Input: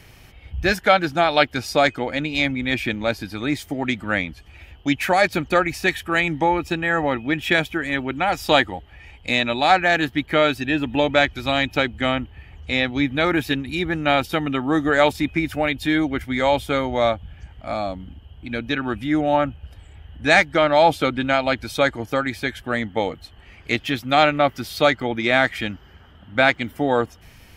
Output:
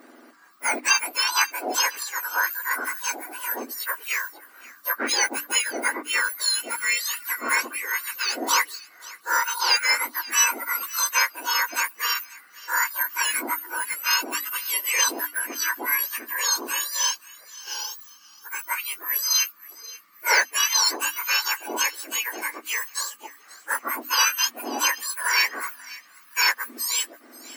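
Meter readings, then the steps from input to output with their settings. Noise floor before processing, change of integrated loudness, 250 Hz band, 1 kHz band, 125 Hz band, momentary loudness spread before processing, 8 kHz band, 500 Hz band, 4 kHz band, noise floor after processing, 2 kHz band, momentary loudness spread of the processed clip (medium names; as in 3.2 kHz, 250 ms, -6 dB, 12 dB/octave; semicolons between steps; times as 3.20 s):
-48 dBFS, -2.5 dB, -19.0 dB, -6.5 dB, under -40 dB, 10 LU, +18.5 dB, -18.0 dB, +1.5 dB, -52 dBFS, -2.5 dB, 13 LU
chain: spectrum inverted on a logarithmic axis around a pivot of 1.9 kHz; hum notches 50/100/150/200/250/300 Hz; feedback echo behind a high-pass 533 ms, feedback 36%, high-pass 1.4 kHz, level -19 dB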